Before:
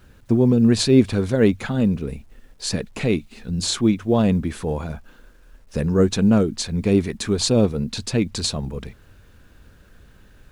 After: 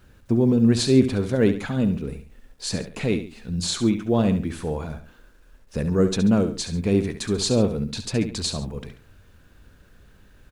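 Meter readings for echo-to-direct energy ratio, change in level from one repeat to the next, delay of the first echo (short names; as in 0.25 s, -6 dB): -10.0 dB, -8.0 dB, 69 ms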